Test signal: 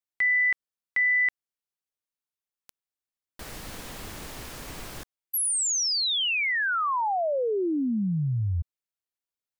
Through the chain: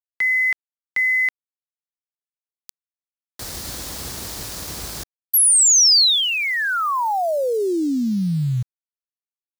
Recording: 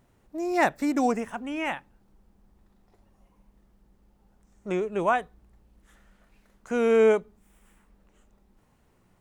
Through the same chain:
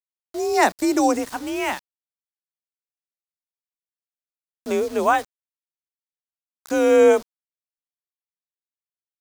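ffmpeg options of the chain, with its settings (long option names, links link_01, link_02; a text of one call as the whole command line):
ffmpeg -i in.wav -af "afreqshift=40,aeval=exprs='val(0)*gte(abs(val(0)),0.00794)':channel_layout=same,highshelf=frequency=3500:width_type=q:width=1.5:gain=6,volume=5.5dB" out.wav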